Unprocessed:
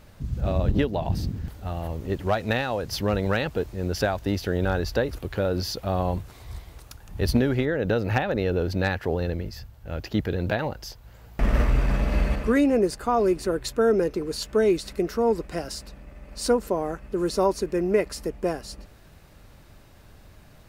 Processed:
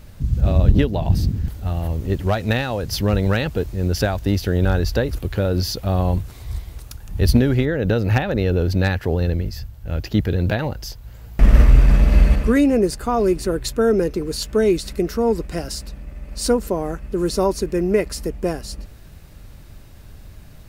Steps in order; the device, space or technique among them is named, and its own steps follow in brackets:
smiley-face EQ (low-shelf EQ 140 Hz +7 dB; parametric band 880 Hz −3.5 dB 2.2 octaves; high-shelf EQ 8,200 Hz +4 dB)
level +4.5 dB

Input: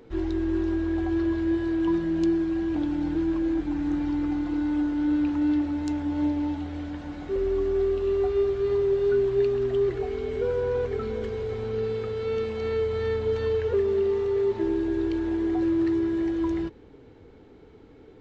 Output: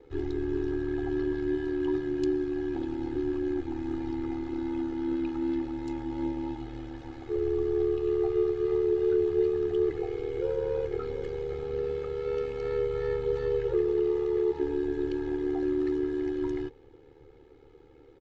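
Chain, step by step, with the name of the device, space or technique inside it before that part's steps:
ring-modulated robot voice (ring modulation 37 Hz; comb filter 2.4 ms, depth 75%)
level −4 dB

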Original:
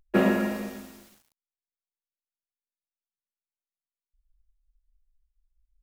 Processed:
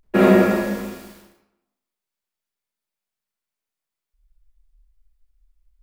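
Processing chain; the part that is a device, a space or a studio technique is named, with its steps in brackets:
bathroom (convolution reverb RT60 0.90 s, pre-delay 31 ms, DRR −5 dB)
level +3.5 dB

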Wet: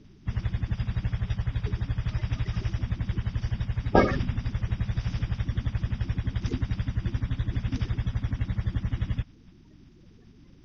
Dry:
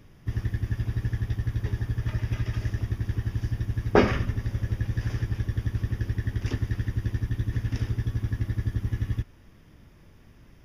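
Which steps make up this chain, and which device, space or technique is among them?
clip after many re-uploads (low-pass filter 5,600 Hz 24 dB per octave; spectral magnitudes quantised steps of 30 dB)

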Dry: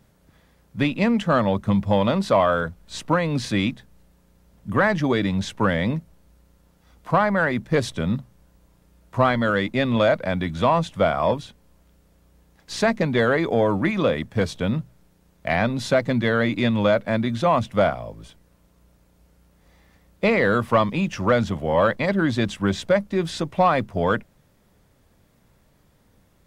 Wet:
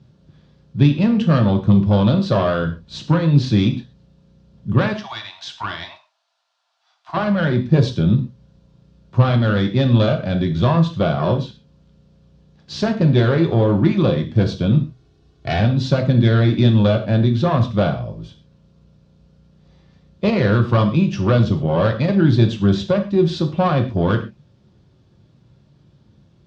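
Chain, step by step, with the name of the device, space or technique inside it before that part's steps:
0:04.93–0:07.17: Butterworth high-pass 650 Hz 96 dB per octave
0:14.78–0:15.60: comb filter 2.7 ms, depth 80%
guitar amplifier (tube saturation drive 13 dB, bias 0.6; bass and treble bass +13 dB, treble +14 dB; loudspeaker in its box 92–4,300 Hz, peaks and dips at 130 Hz +6 dB, 380 Hz +6 dB, 2,000 Hz −7 dB)
reverb whose tail is shaped and stops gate 160 ms falling, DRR 4.5 dB

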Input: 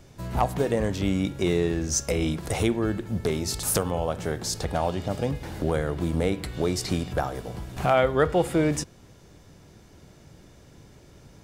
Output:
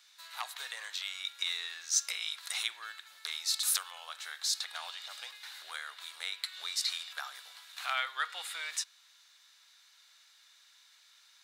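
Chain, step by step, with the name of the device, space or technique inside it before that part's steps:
headphones lying on a table (high-pass filter 1,300 Hz 24 dB per octave; parametric band 3,900 Hz +12 dB 0.36 octaves)
level −3.5 dB

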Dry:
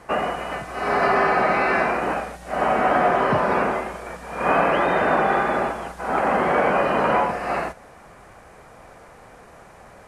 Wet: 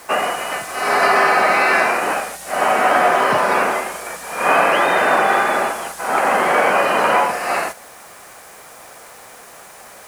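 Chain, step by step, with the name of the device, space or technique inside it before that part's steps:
turntable without a phono preamp (RIAA equalisation recording; white noise bed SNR 31 dB)
level +5 dB

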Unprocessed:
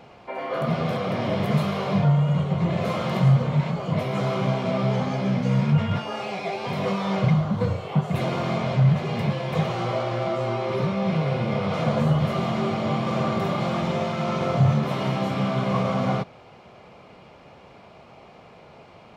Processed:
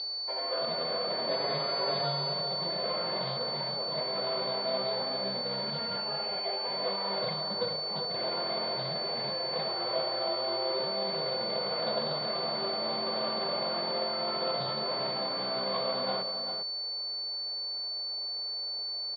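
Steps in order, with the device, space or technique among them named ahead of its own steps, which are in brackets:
low-pass filter 2,600 Hz 24 dB per octave
toy sound module (linearly interpolated sample-rate reduction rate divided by 8×; switching amplifier with a slow clock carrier 4,500 Hz; loudspeaker in its box 630–4,400 Hz, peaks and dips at 770 Hz −6 dB, 1,200 Hz −8 dB, 3,500 Hz +7 dB)
0:01.29–0:02.33: comb filter 7.3 ms, depth 80%
slap from a distant wall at 68 metres, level −7 dB

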